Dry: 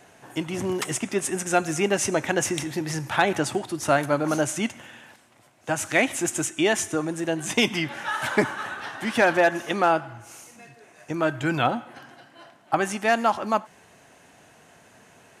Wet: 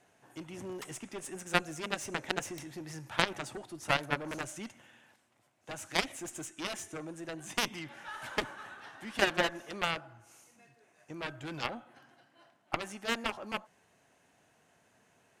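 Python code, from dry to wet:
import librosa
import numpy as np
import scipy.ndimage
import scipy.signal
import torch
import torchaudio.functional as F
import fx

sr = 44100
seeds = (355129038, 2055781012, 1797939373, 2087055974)

y = fx.dynamic_eq(x, sr, hz=540.0, q=2.1, threshold_db=-34.0, ratio=4.0, max_db=5)
y = fx.cheby_harmonics(y, sr, harmonics=(3, 7, 8), levels_db=(-8, -39, -40), full_scale_db=-4.5)
y = y * librosa.db_to_amplitude(-3.0)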